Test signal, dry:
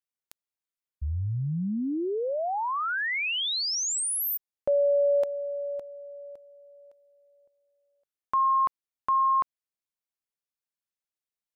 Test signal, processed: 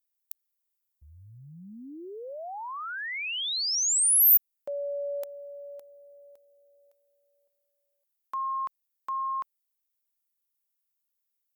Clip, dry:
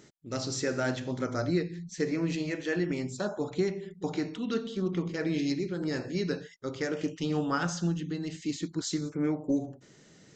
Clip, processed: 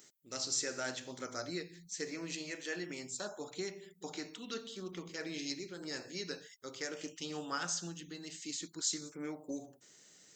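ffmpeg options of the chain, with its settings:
-af "aemphasis=mode=production:type=riaa,volume=0.398" -ar 48000 -c:a libopus -b:a 128k

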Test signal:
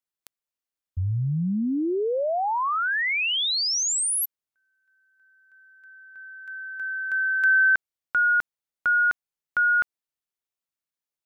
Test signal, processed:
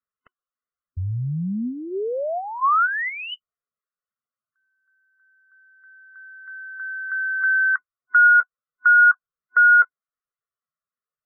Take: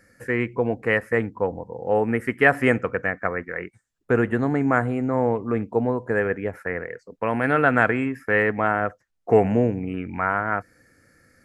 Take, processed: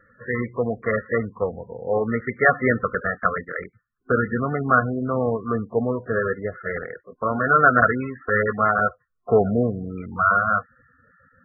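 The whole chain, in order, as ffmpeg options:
-af "superequalizer=6b=0.447:9b=0.501:10b=2.51:12b=0.447" -ar 24000 -c:a libmp3lame -b:a 8k

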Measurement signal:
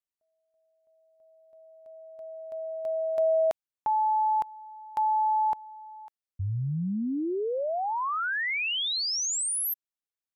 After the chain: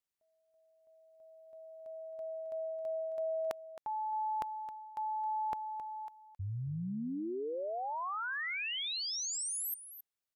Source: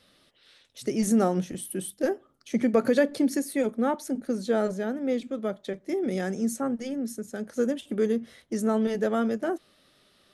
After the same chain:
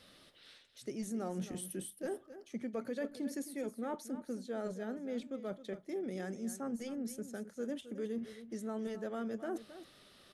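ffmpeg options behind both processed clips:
-af "areverse,acompressor=threshold=0.0112:ratio=4:attack=6.9:release=669:knee=6:detection=peak,areverse,aecho=1:1:267:0.224,volume=1.12"

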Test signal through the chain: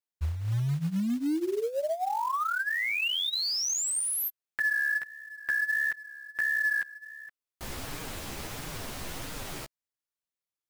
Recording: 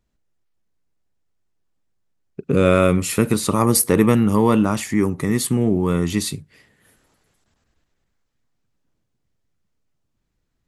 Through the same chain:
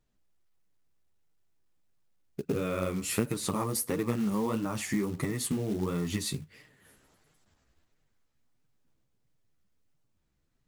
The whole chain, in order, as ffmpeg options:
-af "acompressor=threshold=0.0708:ratio=12,flanger=delay=6.4:depth=9:regen=1:speed=1.5:shape=sinusoidal,acrusher=bits=5:mode=log:mix=0:aa=0.000001"

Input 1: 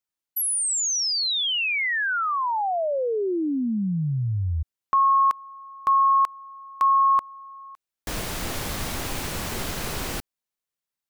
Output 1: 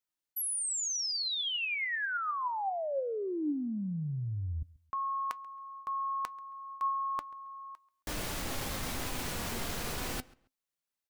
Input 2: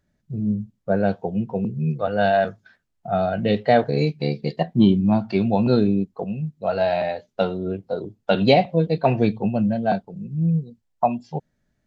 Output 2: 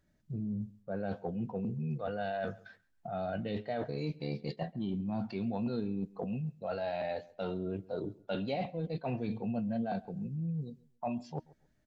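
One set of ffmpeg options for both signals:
-filter_complex "[0:a]areverse,acompressor=threshold=0.0316:ratio=10:attack=9.4:release=75:knee=6:detection=rms,areverse,asplit=2[s0][s1];[s1]adelay=136,lowpass=f=3700:p=1,volume=0.0794,asplit=2[s2][s3];[s3]adelay=136,lowpass=f=3700:p=1,volume=0.24[s4];[s0][s2][s4]amix=inputs=3:normalize=0,flanger=delay=3.1:depth=1.2:regen=80:speed=0.26:shape=triangular,volume=1.26"

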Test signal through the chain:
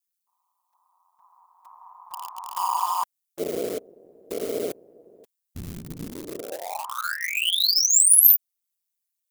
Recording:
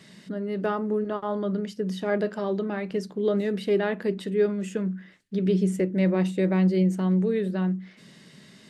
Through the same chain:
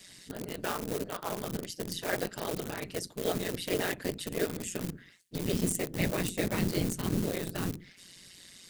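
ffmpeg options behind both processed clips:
-filter_complex "[0:a]afftfilt=real='hypot(re,im)*cos(2*PI*random(0))':imag='hypot(re,im)*sin(2*PI*random(1))':win_size=512:overlap=0.75,asplit=2[s0][s1];[s1]aeval=exprs='val(0)*gte(abs(val(0)),0.0335)':c=same,volume=0.316[s2];[s0][s2]amix=inputs=2:normalize=0,tremolo=f=180:d=0.71,crystalizer=i=8.5:c=0,volume=0.75"

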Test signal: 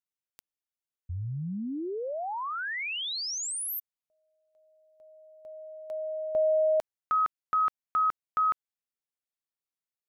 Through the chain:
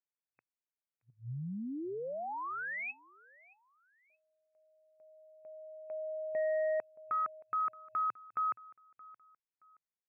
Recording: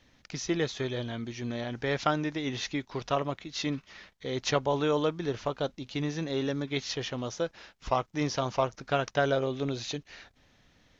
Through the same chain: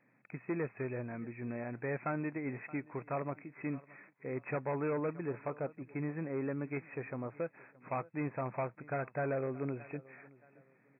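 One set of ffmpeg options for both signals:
-af "aecho=1:1:623|1246:0.0708|0.0219,asoftclip=type=hard:threshold=0.0596,afftfilt=real='re*between(b*sr/4096,110,2600)':imag='im*between(b*sr/4096,110,2600)':win_size=4096:overlap=0.75,volume=0.531"

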